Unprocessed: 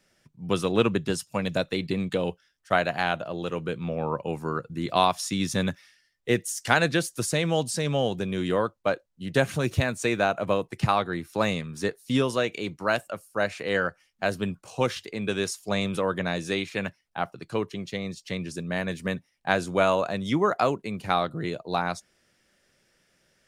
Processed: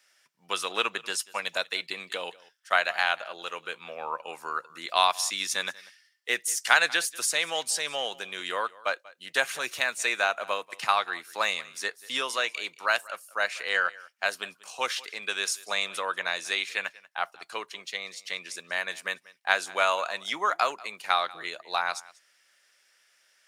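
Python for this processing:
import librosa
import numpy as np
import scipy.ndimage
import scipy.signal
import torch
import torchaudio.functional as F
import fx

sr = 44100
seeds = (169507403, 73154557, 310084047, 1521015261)

y = scipy.signal.sosfilt(scipy.signal.butter(2, 1100.0, 'highpass', fs=sr, output='sos'), x)
y = y + 10.0 ** (-21.5 / 20.0) * np.pad(y, (int(189 * sr / 1000.0), 0))[:len(y)]
y = y * 10.0 ** (4.0 / 20.0)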